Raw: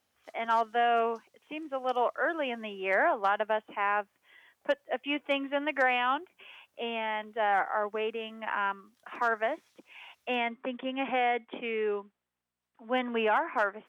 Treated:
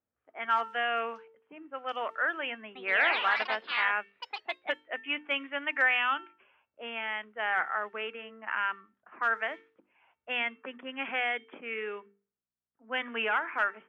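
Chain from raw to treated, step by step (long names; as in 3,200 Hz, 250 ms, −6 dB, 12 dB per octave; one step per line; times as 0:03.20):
mains-hum notches 50/100/150/200/250/300/350/400/450 Hz
tuned comb filter 450 Hz, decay 0.46 s, mix 60%
low-pass that shuts in the quiet parts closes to 510 Hz, open at −31.5 dBFS
flat-topped bell 2,000 Hz +10.5 dB
0:02.63–0:04.99: delay with pitch and tempo change per echo 122 ms, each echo +3 semitones, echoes 3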